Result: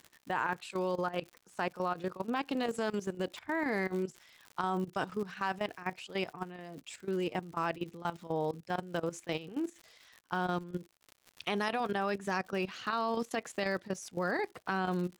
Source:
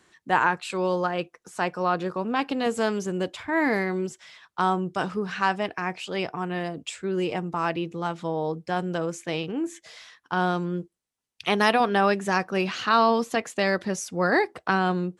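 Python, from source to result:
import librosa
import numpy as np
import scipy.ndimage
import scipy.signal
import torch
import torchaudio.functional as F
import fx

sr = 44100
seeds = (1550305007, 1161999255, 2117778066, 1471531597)

y = fx.dmg_crackle(x, sr, seeds[0], per_s=140.0, level_db=-34.0)
y = fx.chopper(y, sr, hz=4.1, depth_pct=60, duty_pct=90)
y = fx.level_steps(y, sr, step_db=14)
y = F.gain(torch.from_numpy(y), -4.0).numpy()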